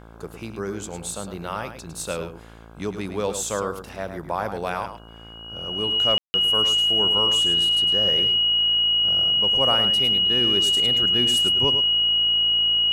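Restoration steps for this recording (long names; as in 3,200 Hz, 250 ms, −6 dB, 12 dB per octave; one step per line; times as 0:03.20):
hum removal 56 Hz, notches 29
notch filter 2,900 Hz, Q 30
ambience match 0:06.18–0:06.34
echo removal 106 ms −9 dB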